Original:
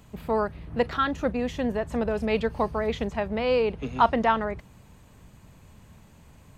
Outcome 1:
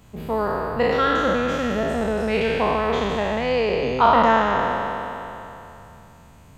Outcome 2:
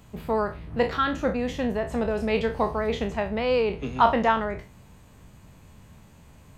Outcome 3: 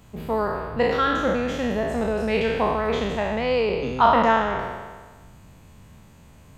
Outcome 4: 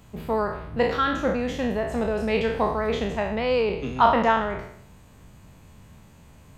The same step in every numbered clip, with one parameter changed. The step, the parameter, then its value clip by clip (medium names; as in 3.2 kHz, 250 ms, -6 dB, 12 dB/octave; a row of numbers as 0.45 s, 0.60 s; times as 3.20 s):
spectral sustain, RT60: 3.02 s, 0.31 s, 1.43 s, 0.68 s